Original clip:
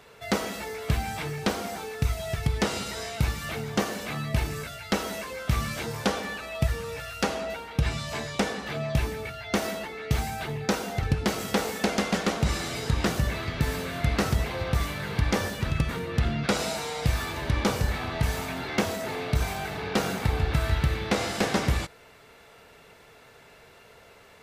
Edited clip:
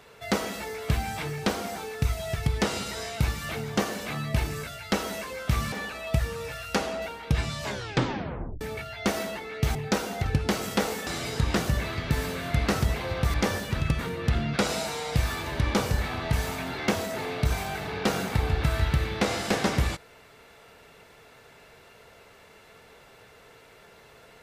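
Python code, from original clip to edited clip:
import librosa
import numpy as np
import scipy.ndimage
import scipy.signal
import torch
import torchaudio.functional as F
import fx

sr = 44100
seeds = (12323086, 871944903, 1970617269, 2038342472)

y = fx.edit(x, sr, fx.cut(start_s=5.72, length_s=0.48),
    fx.tape_stop(start_s=8.12, length_s=0.97),
    fx.cut(start_s=10.23, length_s=0.29),
    fx.cut(start_s=11.84, length_s=0.73),
    fx.cut(start_s=14.84, length_s=0.4), tone=tone)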